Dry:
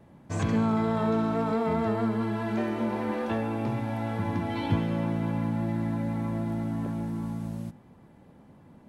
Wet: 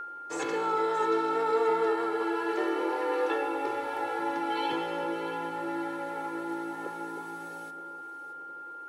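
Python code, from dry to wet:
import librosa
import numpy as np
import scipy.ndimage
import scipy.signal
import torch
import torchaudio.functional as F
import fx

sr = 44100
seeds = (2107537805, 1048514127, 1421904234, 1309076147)

p1 = scipy.signal.sosfilt(scipy.signal.butter(4, 300.0, 'highpass', fs=sr, output='sos'), x)
p2 = p1 + 0.97 * np.pad(p1, (int(2.3 * sr / 1000.0), 0))[:len(p1)]
p3 = p2 + 10.0 ** (-33.0 / 20.0) * np.sin(2.0 * np.pi * 1400.0 * np.arange(len(p2)) / sr)
p4 = p3 + fx.echo_alternate(p3, sr, ms=312, hz=840.0, feedback_pct=59, wet_db=-8, dry=0)
p5 = fx.room_shoebox(p4, sr, seeds[0], volume_m3=2200.0, walls='furnished', distance_m=0.7)
y = p5 * 10.0 ** (-1.0 / 20.0)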